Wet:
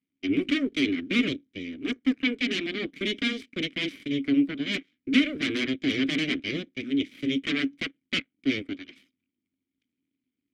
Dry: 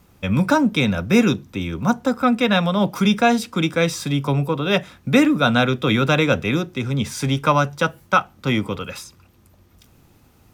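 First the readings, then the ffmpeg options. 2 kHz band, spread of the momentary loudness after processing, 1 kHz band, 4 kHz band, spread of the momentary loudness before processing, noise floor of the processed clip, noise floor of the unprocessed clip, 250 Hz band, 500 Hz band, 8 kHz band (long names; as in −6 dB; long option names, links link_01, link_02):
−6.5 dB, 8 LU, −26.5 dB, −4.0 dB, 7 LU, below −85 dBFS, −54 dBFS, −6.5 dB, −14.0 dB, −13.5 dB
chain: -filter_complex "[0:a]aeval=exprs='0.75*(cos(1*acos(clip(val(0)/0.75,-1,1)))-cos(1*PI/2))+0.266*(cos(3*acos(clip(val(0)/0.75,-1,1)))-cos(3*PI/2))+0.0188*(cos(5*acos(clip(val(0)/0.75,-1,1)))-cos(5*PI/2))+0.188*(cos(8*acos(clip(val(0)/0.75,-1,1)))-cos(8*PI/2))':channel_layout=same,asplit=3[link_01][link_02][link_03];[link_01]bandpass=frequency=270:width_type=q:width=8,volume=0dB[link_04];[link_02]bandpass=frequency=2290:width_type=q:width=8,volume=-6dB[link_05];[link_03]bandpass=frequency=3010:width_type=q:width=8,volume=-9dB[link_06];[link_04][link_05][link_06]amix=inputs=3:normalize=0,volume=5.5dB"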